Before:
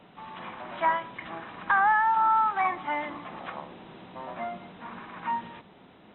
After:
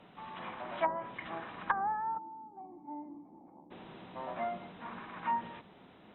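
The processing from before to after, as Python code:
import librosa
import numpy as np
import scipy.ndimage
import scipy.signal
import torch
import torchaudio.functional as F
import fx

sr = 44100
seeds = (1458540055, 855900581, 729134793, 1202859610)

y = fx.env_lowpass_down(x, sr, base_hz=550.0, full_db=-20.5)
y = fx.formant_cascade(y, sr, vowel='u', at=(2.17, 3.7), fade=0.02)
y = fx.dynamic_eq(y, sr, hz=580.0, q=1.4, threshold_db=-44.0, ratio=4.0, max_db=3)
y = y * 10.0 ** (-3.5 / 20.0)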